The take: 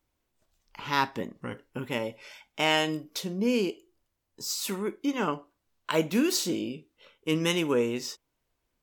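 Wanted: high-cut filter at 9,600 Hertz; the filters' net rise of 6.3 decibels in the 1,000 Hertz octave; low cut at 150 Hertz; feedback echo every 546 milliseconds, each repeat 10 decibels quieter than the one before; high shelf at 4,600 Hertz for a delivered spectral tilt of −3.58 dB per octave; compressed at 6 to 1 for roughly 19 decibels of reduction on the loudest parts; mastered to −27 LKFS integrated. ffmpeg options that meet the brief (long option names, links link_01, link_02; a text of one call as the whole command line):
ffmpeg -i in.wav -af "highpass=150,lowpass=9600,equalizer=frequency=1000:width_type=o:gain=7.5,highshelf=frequency=4600:gain=-4,acompressor=threshold=-36dB:ratio=6,aecho=1:1:546|1092|1638|2184:0.316|0.101|0.0324|0.0104,volume=13.5dB" out.wav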